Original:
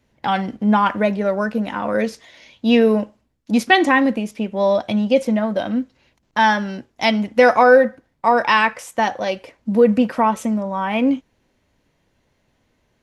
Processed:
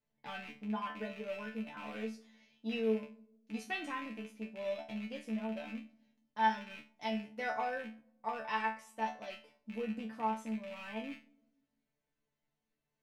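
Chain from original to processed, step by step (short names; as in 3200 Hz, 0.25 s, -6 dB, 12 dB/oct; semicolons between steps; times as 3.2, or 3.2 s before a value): rattling part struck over -31 dBFS, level -14 dBFS; resonator bank D3 fifth, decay 0.29 s; reverb RT60 0.95 s, pre-delay 6 ms, DRR 17 dB; gain -9 dB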